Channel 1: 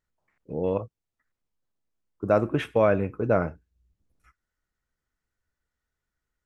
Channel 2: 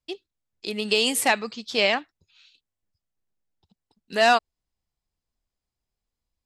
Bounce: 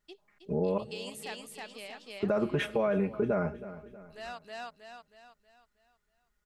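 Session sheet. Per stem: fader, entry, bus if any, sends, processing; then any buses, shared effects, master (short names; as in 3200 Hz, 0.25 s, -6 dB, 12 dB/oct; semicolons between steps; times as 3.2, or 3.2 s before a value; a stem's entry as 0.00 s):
+1.5 dB, 0.00 s, no send, echo send -20.5 dB, comb 4.9 ms, depth 97%; limiter -15 dBFS, peak gain reduction 9.5 dB
-15.5 dB, 0.00 s, no send, echo send -8.5 dB, auto duck -9 dB, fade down 1.75 s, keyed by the first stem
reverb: off
echo: feedback echo 0.318 s, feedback 43%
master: compressor 2:1, threshold -29 dBFS, peak gain reduction 6 dB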